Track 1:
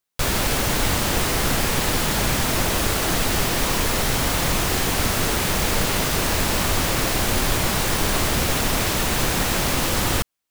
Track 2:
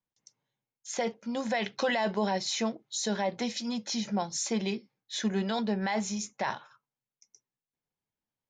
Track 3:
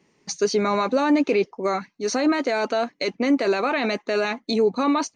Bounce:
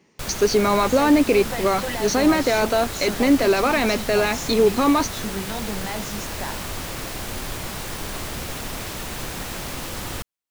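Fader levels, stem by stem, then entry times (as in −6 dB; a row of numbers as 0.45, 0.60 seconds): −9.5, −1.5, +3.0 decibels; 0.00, 0.00, 0.00 seconds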